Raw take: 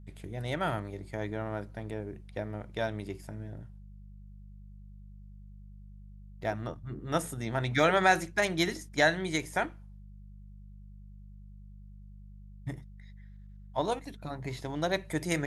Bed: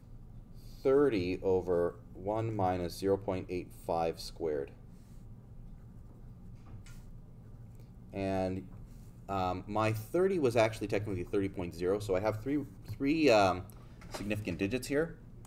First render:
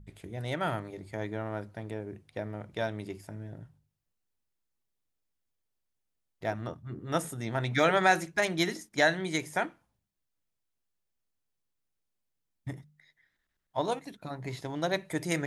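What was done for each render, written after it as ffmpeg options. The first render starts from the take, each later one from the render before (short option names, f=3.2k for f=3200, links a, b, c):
-af "bandreject=f=50:t=h:w=4,bandreject=f=100:t=h:w=4,bandreject=f=150:t=h:w=4,bandreject=f=200:t=h:w=4"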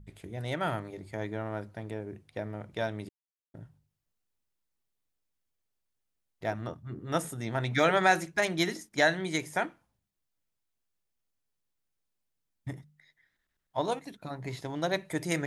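-filter_complex "[0:a]asplit=3[a][b][c];[a]atrim=end=3.09,asetpts=PTS-STARTPTS,afade=t=out:st=3.086:d=0.004:c=hsin[d];[b]atrim=start=3.09:end=3.54,asetpts=PTS-STARTPTS,volume=0[e];[c]atrim=start=3.54,asetpts=PTS-STARTPTS,afade=t=in:d=0.004:c=hsin[f];[d][e][f]concat=n=3:v=0:a=1"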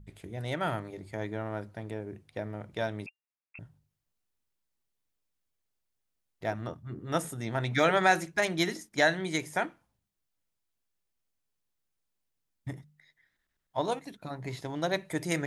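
-filter_complex "[0:a]asettb=1/sr,asplit=3[a][b][c];[a]atrim=end=3.064[d];[b]atrim=start=3.06:end=3.59,asetpts=PTS-STARTPTS,afade=t=in:d=0.004:c=qsin,afade=t=out:st=0.526:d=0.004:c=qsin,lowpass=f=2.4k:t=q:w=0.5098,lowpass=f=2.4k:t=q:w=0.6013,lowpass=f=2.4k:t=q:w=0.9,lowpass=f=2.4k:t=q:w=2.563,afreqshift=-2800[e];[c]atrim=start=3.586[f];[d][e]acrossfade=d=0.004:c1=hsin:c2=qsin[g];[g][f]acrossfade=d=0.004:c1=qsin:c2=hsin"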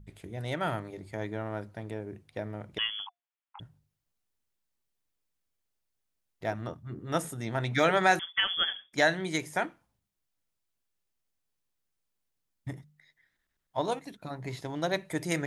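-filter_complex "[0:a]asettb=1/sr,asplit=3[a][b][c];[a]atrim=end=2.784[d];[b]atrim=start=2.78:end=3.6,asetpts=PTS-STARTPTS,afade=t=in:d=0.004:c=qsin,afade=t=out:st=0.816:d=0.004:c=qsin,lowpass=f=3k:t=q:w=0.5098,lowpass=f=3k:t=q:w=0.6013,lowpass=f=3k:t=q:w=0.9,lowpass=f=3k:t=q:w=2.563,afreqshift=-3500[e];[c]atrim=start=3.596[f];[d][e]acrossfade=d=0.004:c1=hsin:c2=qsin[g];[g][f]acrossfade=d=0.004:c1=qsin:c2=hsin,asettb=1/sr,asplit=3[h][i][j];[h]atrim=end=8.194[k];[i]atrim=start=8.19:end=8.93,asetpts=PTS-STARTPTS,afade=t=in:d=0.004:c=qsin,afade=t=out:st=0.736:d=0.004:c=qsin,lowpass=f=3.1k:t=q:w=0.5098,lowpass=f=3.1k:t=q:w=0.6013,lowpass=f=3.1k:t=q:w=0.9,lowpass=f=3.1k:t=q:w=2.563,afreqshift=-3600[l];[j]atrim=start=8.926[m];[k][l]acrossfade=d=0.004:c1=hsin:c2=qsin[n];[n][m]acrossfade=d=0.004:c1=qsin:c2=hsin"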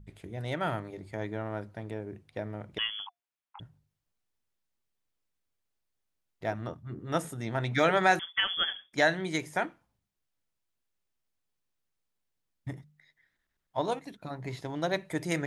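-af "highshelf=f=5.9k:g=-5"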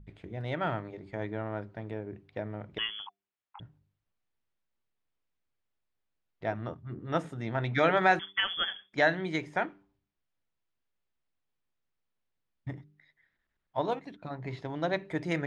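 -af "lowpass=3.5k,bandreject=f=98.29:t=h:w=4,bandreject=f=196.58:t=h:w=4,bandreject=f=294.87:t=h:w=4,bandreject=f=393.16:t=h:w=4"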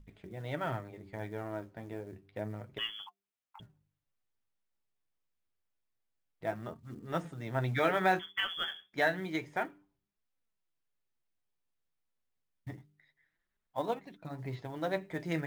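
-af "acrusher=bits=7:mode=log:mix=0:aa=0.000001,flanger=delay=3.7:depth=9.7:regen=46:speed=0.29:shape=triangular"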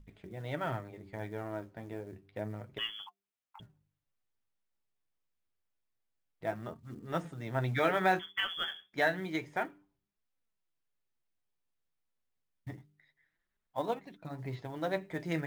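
-af anull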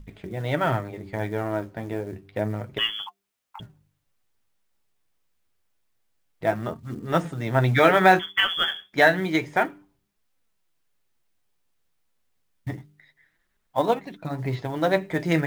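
-af "volume=12dB"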